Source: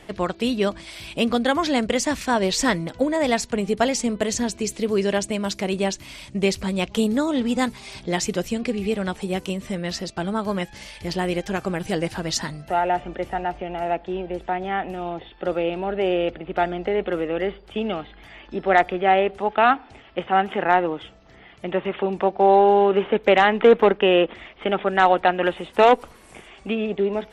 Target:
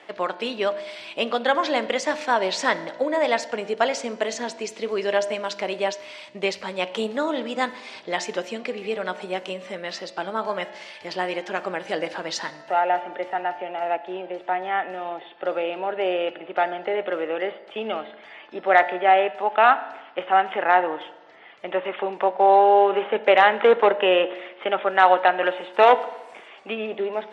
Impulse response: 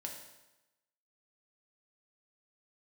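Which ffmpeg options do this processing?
-filter_complex "[0:a]highpass=550,lowpass=7100,highshelf=f=5300:g=-8.5,asplit=2[s0][s1];[1:a]atrim=start_sample=2205,lowpass=5200,lowshelf=f=410:g=6.5[s2];[s1][s2]afir=irnorm=-1:irlink=0,volume=0.501[s3];[s0][s3]amix=inputs=2:normalize=0"

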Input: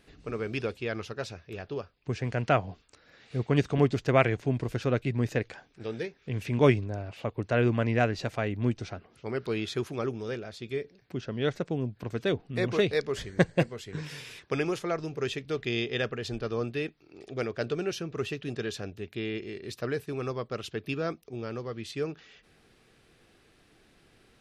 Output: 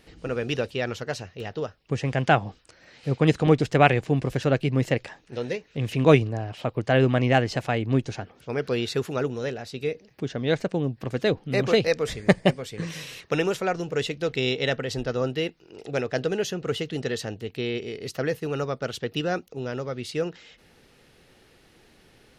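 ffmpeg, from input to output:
-af "asetrate=48069,aresample=44100,volume=1.78"

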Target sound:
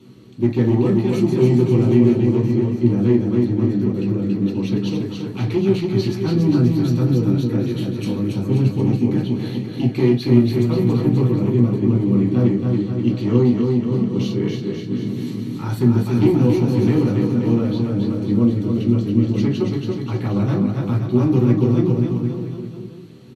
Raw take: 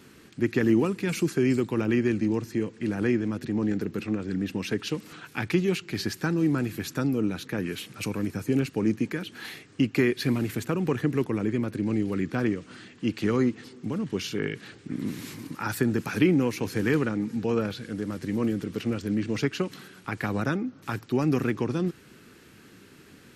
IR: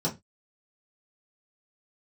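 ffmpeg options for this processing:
-filter_complex "[0:a]volume=8.41,asoftclip=hard,volume=0.119,aecho=1:1:280|532|758.8|962.9|1147:0.631|0.398|0.251|0.158|0.1[s0];[1:a]atrim=start_sample=2205,asetrate=33516,aresample=44100[s1];[s0][s1]afir=irnorm=-1:irlink=0,volume=0.335"

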